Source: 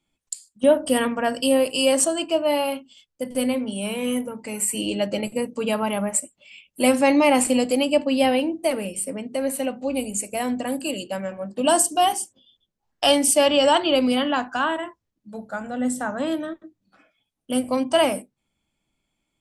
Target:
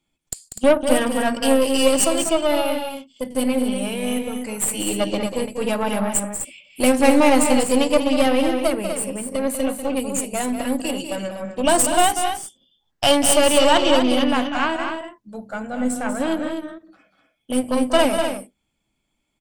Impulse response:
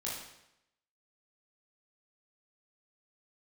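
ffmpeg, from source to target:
-af "aeval=exprs='0.562*(cos(1*acos(clip(val(0)/0.562,-1,1)))-cos(1*PI/2))+0.0631*(cos(6*acos(clip(val(0)/0.562,-1,1)))-cos(6*PI/2))':c=same,aecho=1:1:192.4|247.8:0.355|0.398,volume=1dB"

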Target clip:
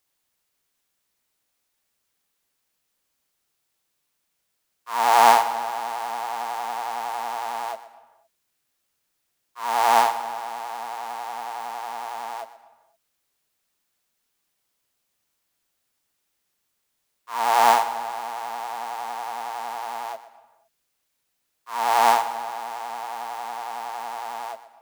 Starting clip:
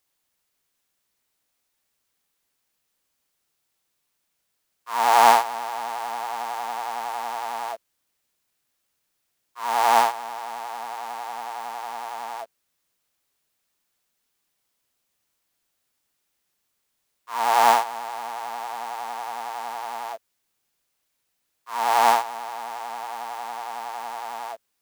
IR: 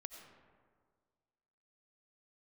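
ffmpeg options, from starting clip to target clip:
-filter_complex "[0:a]asplit=2[a][b];[1:a]atrim=start_sample=2205,afade=t=out:st=0.45:d=0.01,atrim=end_sample=20286,adelay=122[c];[b][c]afir=irnorm=-1:irlink=0,volume=-9dB[d];[a][d]amix=inputs=2:normalize=0"

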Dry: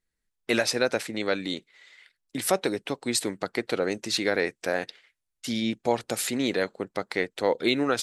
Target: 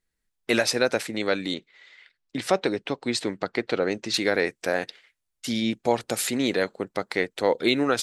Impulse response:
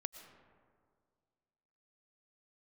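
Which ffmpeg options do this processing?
-filter_complex "[0:a]asettb=1/sr,asplit=3[a][b][c];[a]atrim=end=1.544[d];[b]atrim=start=1.54:end=4.14,asetpts=PTS-STARTPTS,afade=t=in:d=0.004:c=qsin,afade=t=out:st=2.596:d=0.004:c=qsin,lowpass=5.1k[e];[c]atrim=start=4.136[f];[d][e]acrossfade=d=0.004:c1=hsin:c2=qsin[g];[g][f]acrossfade=d=0.004:c1=qsin:c2=hsin,volume=2dB"

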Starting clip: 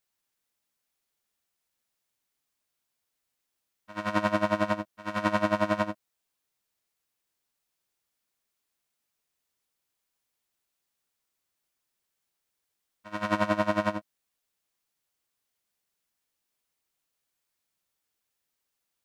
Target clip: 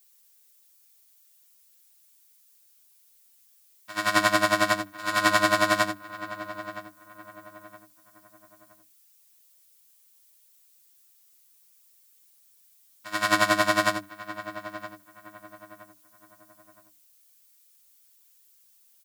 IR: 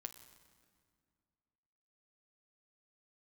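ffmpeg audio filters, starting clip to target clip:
-filter_complex "[0:a]bandreject=f=50:t=h:w=6,bandreject=f=100:t=h:w=6,bandreject=f=150:t=h:w=6,bandreject=f=200:t=h:w=6,bandreject=f=250:t=h:w=6,bandreject=f=300:t=h:w=6,aecho=1:1:6.9:0.73,asplit=2[a][b];[b]adelay=968,lowpass=f=1.8k:p=1,volume=-13.5dB,asplit=2[c][d];[d]adelay=968,lowpass=f=1.8k:p=1,volume=0.36,asplit=2[e][f];[f]adelay=968,lowpass=f=1.8k:p=1,volume=0.36[g];[a][c][e][g]amix=inputs=4:normalize=0,crystalizer=i=6.5:c=0"

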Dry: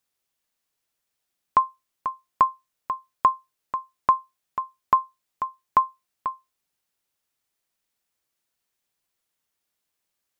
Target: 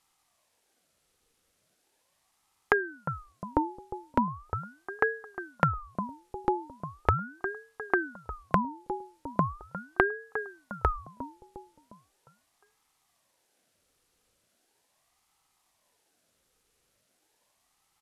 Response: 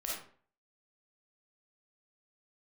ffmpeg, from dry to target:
-filter_complex "[0:a]asplit=2[a][b];[b]alimiter=limit=-17dB:level=0:latency=1:release=140,volume=1.5dB[c];[a][c]amix=inputs=2:normalize=0,lowshelf=f=560:t=q:w=3:g=7.5,asplit=2[d][e];[e]adelay=205,lowpass=f=1.7k:p=1,volume=-15dB,asplit=2[f][g];[g]adelay=205,lowpass=f=1.7k:p=1,volume=0.49,asplit=2[h][i];[i]adelay=205,lowpass=f=1.7k:p=1,volume=0.49,asplit=2[j][k];[k]adelay=205,lowpass=f=1.7k:p=1,volume=0.49,asplit=2[l][m];[m]adelay=205,lowpass=f=1.7k:p=1,volume=0.49[n];[f][h][j][l][n]amix=inputs=5:normalize=0[o];[d][o]amix=inputs=2:normalize=0,acompressor=threshold=-22dB:ratio=6,asetrate=25442,aresample=44100,equalizer=f=1k:t=o:w=0.25:g=7,aeval=exprs='val(0)*sin(2*PI*640*n/s+640*0.65/0.39*sin(2*PI*0.39*n/s))':c=same,volume=2.5dB"

